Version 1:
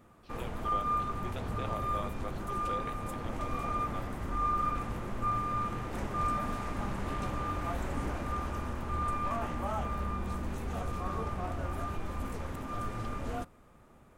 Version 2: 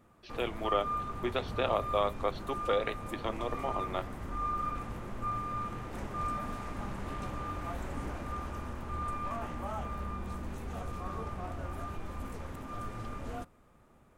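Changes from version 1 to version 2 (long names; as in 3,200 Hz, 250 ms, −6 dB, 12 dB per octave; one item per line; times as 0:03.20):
speech +11.5 dB
background −3.5 dB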